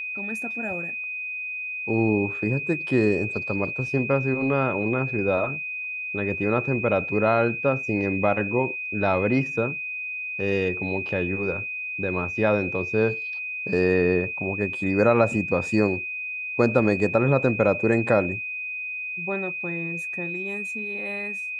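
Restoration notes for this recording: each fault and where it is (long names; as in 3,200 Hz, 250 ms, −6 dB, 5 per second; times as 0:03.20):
whistle 2,500 Hz −29 dBFS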